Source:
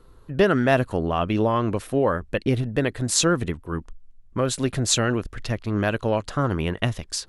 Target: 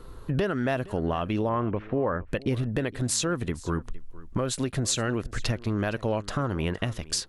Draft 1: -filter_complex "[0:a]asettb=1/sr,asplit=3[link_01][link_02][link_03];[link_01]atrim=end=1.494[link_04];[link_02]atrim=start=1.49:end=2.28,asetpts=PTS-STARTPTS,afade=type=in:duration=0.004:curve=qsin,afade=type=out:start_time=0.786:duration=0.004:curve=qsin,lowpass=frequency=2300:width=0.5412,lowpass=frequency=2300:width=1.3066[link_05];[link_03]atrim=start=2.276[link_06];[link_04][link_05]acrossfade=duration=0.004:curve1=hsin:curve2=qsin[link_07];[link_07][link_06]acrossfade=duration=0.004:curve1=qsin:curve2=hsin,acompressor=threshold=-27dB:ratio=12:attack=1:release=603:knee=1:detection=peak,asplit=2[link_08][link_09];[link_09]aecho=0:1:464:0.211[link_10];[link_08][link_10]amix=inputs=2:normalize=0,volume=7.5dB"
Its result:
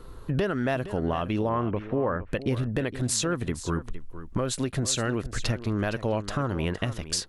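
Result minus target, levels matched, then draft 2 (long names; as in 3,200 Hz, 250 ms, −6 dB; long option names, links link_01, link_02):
echo-to-direct +6.5 dB
-filter_complex "[0:a]asettb=1/sr,asplit=3[link_01][link_02][link_03];[link_01]atrim=end=1.494[link_04];[link_02]atrim=start=1.49:end=2.28,asetpts=PTS-STARTPTS,afade=type=in:duration=0.004:curve=qsin,afade=type=out:start_time=0.786:duration=0.004:curve=qsin,lowpass=frequency=2300:width=0.5412,lowpass=frequency=2300:width=1.3066[link_05];[link_03]atrim=start=2.276[link_06];[link_04][link_05]acrossfade=duration=0.004:curve1=hsin:curve2=qsin[link_07];[link_07][link_06]acrossfade=duration=0.004:curve1=qsin:curve2=hsin,acompressor=threshold=-27dB:ratio=12:attack=1:release=603:knee=1:detection=peak,asplit=2[link_08][link_09];[link_09]aecho=0:1:464:0.1[link_10];[link_08][link_10]amix=inputs=2:normalize=0,volume=7.5dB"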